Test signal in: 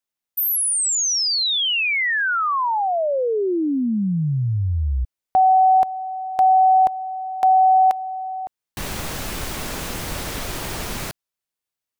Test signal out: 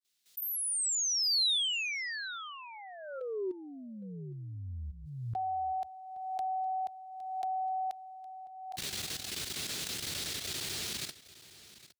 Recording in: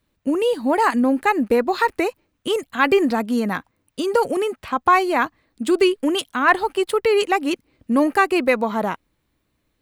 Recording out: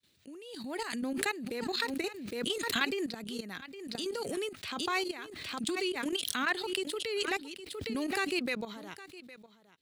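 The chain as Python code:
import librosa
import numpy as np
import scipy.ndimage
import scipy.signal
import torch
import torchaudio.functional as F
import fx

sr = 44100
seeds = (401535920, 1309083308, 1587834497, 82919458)

p1 = fx.fade_in_head(x, sr, length_s=0.98)
p2 = scipy.signal.sosfilt(scipy.signal.butter(4, 86.0, 'highpass', fs=sr, output='sos'), p1)
p3 = fx.peak_eq(p2, sr, hz=430.0, db=9.0, octaves=0.88)
p4 = fx.level_steps(p3, sr, step_db=14)
p5 = fx.graphic_eq_10(p4, sr, hz=(125, 250, 500, 1000, 4000, 8000), db=(-4, -5, -12, -9, 9, 4))
p6 = p5 + fx.echo_single(p5, sr, ms=812, db=-17.5, dry=0)
p7 = fx.pre_swell(p6, sr, db_per_s=38.0)
y = F.gain(torch.from_numpy(p7), -9.0).numpy()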